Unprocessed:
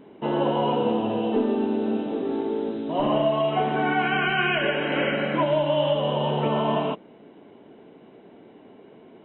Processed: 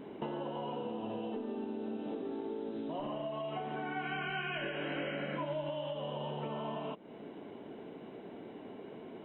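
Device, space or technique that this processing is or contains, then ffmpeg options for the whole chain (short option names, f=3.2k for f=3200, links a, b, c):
serial compression, leveller first: -filter_complex "[0:a]acompressor=threshold=-27dB:ratio=2,acompressor=threshold=-38dB:ratio=6,asettb=1/sr,asplit=3[a][b][c];[a]atrim=end=3.944[d];[b]atrim=start=3.94:end=5.69,asetpts=PTS-STARTPTS,afade=t=in:d=0.004:c=qsin,afade=t=out:st=1.746:d=0.004:c=qsin,asplit=2[e][f];[f]adelay=21,volume=-5dB[g];[e][g]amix=inputs=2:normalize=0,atrim=end_sample=77175[h];[c]atrim=start=5.686[i];[d][h]acrossfade=d=0.004:c1=hsin:c2=qsin[j];[j][i]acrossfade=d=0.004:c1=qsin:c2=hsin,volume=1dB"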